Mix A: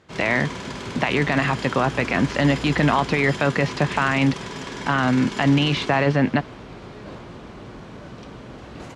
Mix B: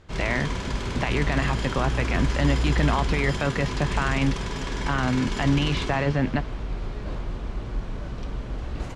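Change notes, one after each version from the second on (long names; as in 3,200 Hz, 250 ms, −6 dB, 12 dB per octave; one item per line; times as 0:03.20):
speech −6.0 dB
master: remove high-pass filter 140 Hz 12 dB per octave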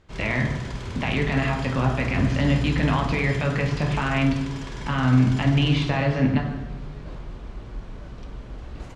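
background −5.5 dB
reverb: on, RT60 1.1 s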